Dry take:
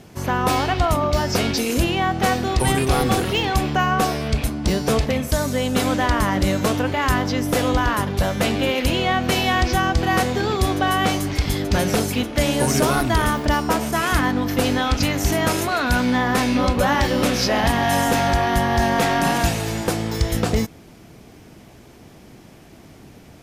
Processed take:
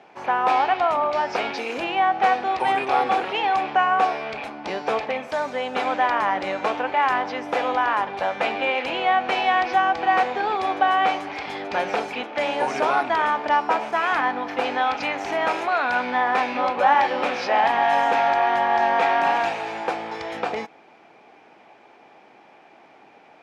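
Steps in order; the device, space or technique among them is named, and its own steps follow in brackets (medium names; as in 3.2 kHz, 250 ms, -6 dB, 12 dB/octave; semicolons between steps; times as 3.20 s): tin-can telephone (band-pass 550–2400 Hz; small resonant body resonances 820/2400 Hz, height 9 dB, ringing for 25 ms)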